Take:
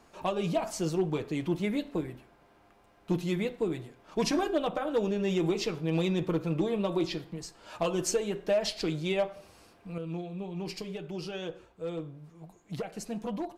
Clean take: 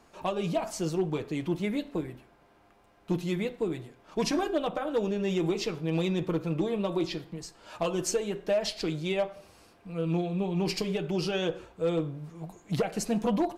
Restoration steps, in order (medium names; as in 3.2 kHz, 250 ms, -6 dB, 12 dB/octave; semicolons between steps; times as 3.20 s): trim 0 dB, from 9.98 s +8 dB